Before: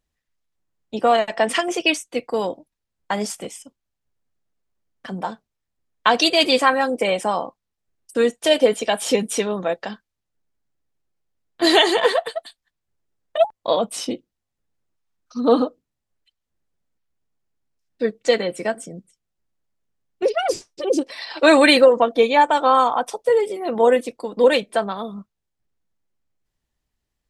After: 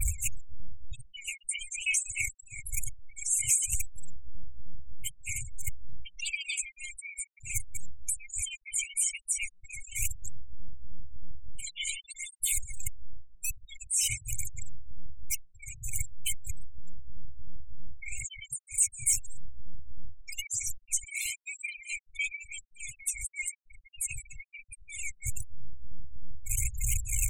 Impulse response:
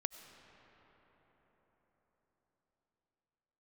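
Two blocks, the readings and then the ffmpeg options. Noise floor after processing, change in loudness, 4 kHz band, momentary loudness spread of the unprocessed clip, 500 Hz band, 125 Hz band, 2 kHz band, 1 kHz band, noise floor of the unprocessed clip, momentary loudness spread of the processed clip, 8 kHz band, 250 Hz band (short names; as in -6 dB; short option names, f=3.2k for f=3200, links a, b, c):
-62 dBFS, -13.5 dB, -17.0 dB, 16 LU, under -40 dB, n/a, -12.5 dB, under -40 dB, -81 dBFS, 18 LU, +6.0 dB, under -35 dB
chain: -filter_complex "[0:a]aeval=exprs='val(0)+0.5*0.1*sgn(val(0))':c=same[a];[1:a]atrim=start_sample=2205,afade=t=out:st=0.24:d=0.01,atrim=end_sample=11025,asetrate=34398,aresample=44100[b];[a][b]afir=irnorm=-1:irlink=0,tremolo=f=3.2:d=0.84,firequalizer=gain_entry='entry(110,0);entry(160,-10);entry(310,-21);entry(580,14);entry(830,-2);entry(1300,-15);entry(2000,8);entry(3000,-3);entry(4500,-12);entry(7600,7)':delay=0.05:min_phase=1,acrossover=split=360|2600[c][d][e];[c]acompressor=threshold=-28dB:ratio=4[f];[d]acompressor=threshold=-15dB:ratio=4[g];[e]acompressor=threshold=-25dB:ratio=4[h];[f][g][h]amix=inputs=3:normalize=0,aphaser=in_gain=1:out_gain=1:delay=1.4:decay=0.43:speed=0.97:type=triangular,areverse,acompressor=threshold=-27dB:ratio=10,areverse,acrusher=bits=5:mode=log:mix=0:aa=0.000001,afftfilt=real='re*(1-between(b*sr/4096,140,2100))':imag='im*(1-between(b*sr/4096,140,2100))':win_size=4096:overlap=0.75,adynamicequalizer=threshold=0.002:dfrequency=6700:dqfactor=2:tfrequency=6700:tqfactor=2:attack=5:release=100:ratio=0.375:range=3.5:mode=boostabove:tftype=bell,afftfilt=real='re*gte(hypot(re,im),0.0251)':imag='im*gte(hypot(re,im),0.0251)':win_size=1024:overlap=0.75,volume=3.5dB"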